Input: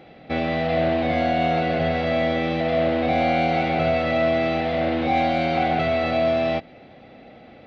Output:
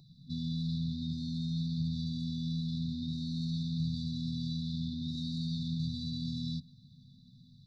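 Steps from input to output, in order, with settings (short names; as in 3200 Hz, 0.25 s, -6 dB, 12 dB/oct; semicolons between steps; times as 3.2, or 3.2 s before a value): FFT band-reject 250–3500 Hz; limiter -23.5 dBFS, peak gain reduction 5 dB; fixed phaser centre 330 Hz, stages 8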